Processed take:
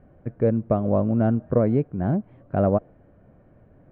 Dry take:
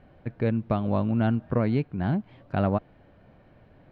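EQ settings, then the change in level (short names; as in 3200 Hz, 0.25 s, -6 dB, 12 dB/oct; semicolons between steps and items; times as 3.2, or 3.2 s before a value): LPF 1200 Hz 12 dB/oct; dynamic EQ 550 Hz, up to +7 dB, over -40 dBFS, Q 1.2; bell 870 Hz -6 dB 0.53 oct; +2.0 dB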